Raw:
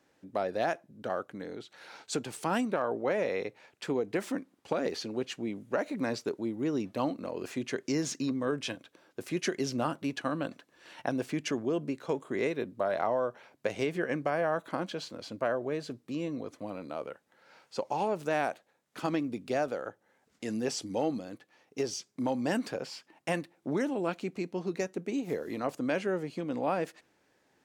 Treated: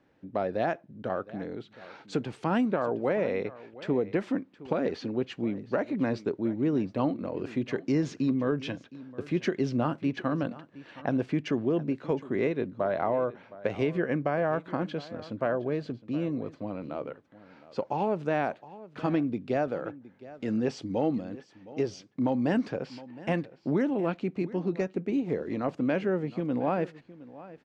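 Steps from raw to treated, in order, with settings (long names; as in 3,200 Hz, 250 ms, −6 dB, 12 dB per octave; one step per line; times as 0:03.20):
low-pass filter 3,300 Hz 12 dB per octave
low-shelf EQ 290 Hz +9 dB
single-tap delay 715 ms −18 dB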